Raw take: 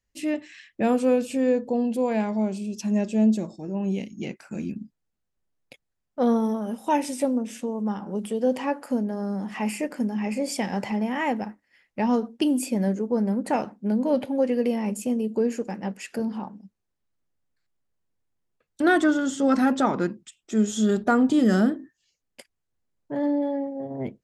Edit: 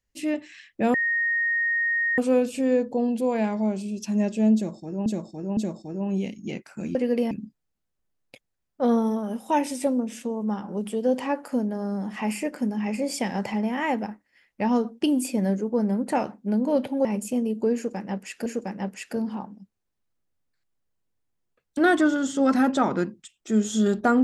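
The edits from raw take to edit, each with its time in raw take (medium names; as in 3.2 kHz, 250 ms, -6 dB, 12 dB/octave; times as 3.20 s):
0.94 s: add tone 1.86 kHz -21 dBFS 1.24 s
3.31–3.82 s: loop, 3 plays
14.43–14.79 s: move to 4.69 s
15.49–16.20 s: loop, 2 plays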